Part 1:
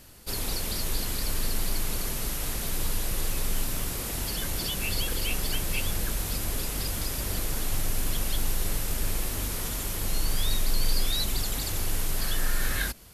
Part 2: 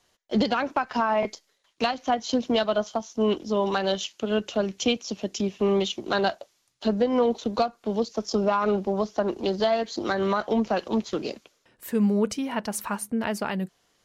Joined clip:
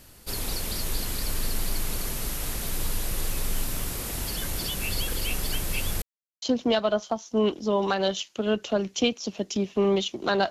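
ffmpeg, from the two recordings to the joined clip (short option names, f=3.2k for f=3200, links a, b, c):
-filter_complex "[0:a]apad=whole_dur=10.5,atrim=end=10.5,asplit=2[a][b];[a]atrim=end=6.02,asetpts=PTS-STARTPTS,afade=t=out:st=6.016:d=0.004:c=hsin[c];[b]atrim=start=6.02:end=6.42,asetpts=PTS-STARTPTS,volume=0[d];[1:a]atrim=start=2.26:end=6.34,asetpts=PTS-STARTPTS,afade=t=in:d=0.004:c=hsin[e];[c][d][e]concat=n=3:v=0:a=1"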